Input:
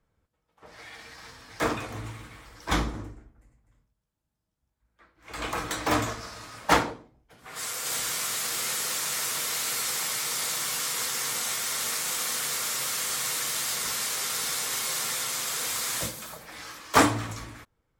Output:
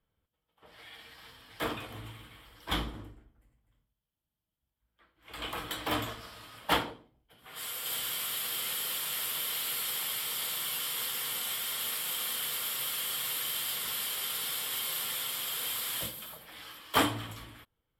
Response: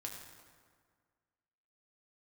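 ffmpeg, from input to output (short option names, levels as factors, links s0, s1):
-af "equalizer=f=3150:t=o:w=0.33:g=12,equalizer=f=6300:t=o:w=0.33:g=-12,equalizer=f=12500:t=o:w=0.33:g=11,volume=0.422"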